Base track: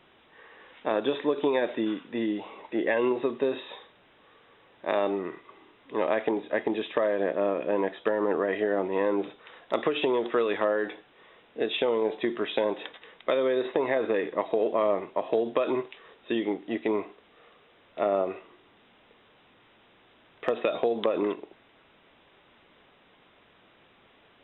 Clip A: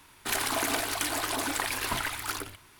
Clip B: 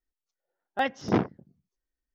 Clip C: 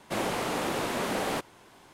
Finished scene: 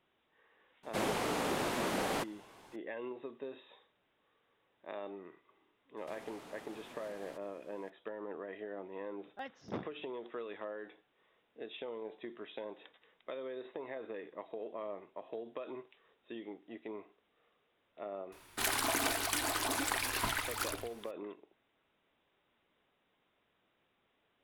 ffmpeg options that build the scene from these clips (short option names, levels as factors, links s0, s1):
-filter_complex "[3:a]asplit=2[s0][s1];[0:a]volume=0.133[s2];[s1]acompressor=threshold=0.0112:ratio=6:attack=3.2:release=140:knee=1:detection=peak[s3];[s0]atrim=end=1.93,asetpts=PTS-STARTPTS,volume=0.596,afade=t=in:d=0.004:c=hsin,afade=t=out:st=1.926:d=0.004:c=hsin,adelay=830[s4];[s3]atrim=end=1.93,asetpts=PTS-STARTPTS,volume=0.282,afade=t=in:d=0.004:c=hsin,afade=t=out:st=1.926:d=0.004:c=hsin,adelay=5970[s5];[2:a]atrim=end=2.14,asetpts=PTS-STARTPTS,volume=0.126,afade=t=in:d=0.004:c=hsin,afade=t=out:st=2.136:d=0.004:c=hsin,adelay=8600[s6];[1:a]atrim=end=2.79,asetpts=PTS-STARTPTS,volume=0.631,afade=t=in:d=0.004:c=hsin,afade=t=out:st=2.786:d=0.004:c=hsin,adelay=18320[s7];[s2][s4][s5][s6][s7]amix=inputs=5:normalize=0"